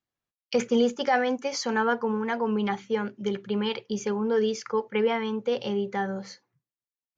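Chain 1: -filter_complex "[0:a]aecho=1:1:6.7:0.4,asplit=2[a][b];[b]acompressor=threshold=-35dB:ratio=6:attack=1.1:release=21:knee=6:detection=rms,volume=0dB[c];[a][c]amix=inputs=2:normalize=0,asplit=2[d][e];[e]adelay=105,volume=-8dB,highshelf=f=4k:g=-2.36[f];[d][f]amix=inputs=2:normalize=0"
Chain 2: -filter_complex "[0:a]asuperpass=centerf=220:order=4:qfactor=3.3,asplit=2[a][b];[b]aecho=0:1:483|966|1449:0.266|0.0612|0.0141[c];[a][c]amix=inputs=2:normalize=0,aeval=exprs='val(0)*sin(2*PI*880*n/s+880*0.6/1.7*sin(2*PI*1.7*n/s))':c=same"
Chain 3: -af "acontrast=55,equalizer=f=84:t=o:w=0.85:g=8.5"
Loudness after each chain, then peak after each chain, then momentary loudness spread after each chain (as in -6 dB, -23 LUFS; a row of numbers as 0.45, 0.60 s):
-24.0, -35.5, -21.0 LUFS; -10.5, -18.5, -6.5 dBFS; 7, 8, 6 LU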